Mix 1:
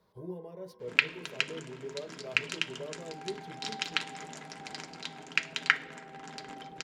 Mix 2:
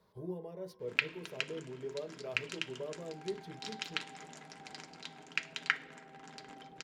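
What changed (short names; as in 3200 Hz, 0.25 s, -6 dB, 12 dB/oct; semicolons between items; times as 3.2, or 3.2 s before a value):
first sound: send -8.5 dB; second sound -6.5 dB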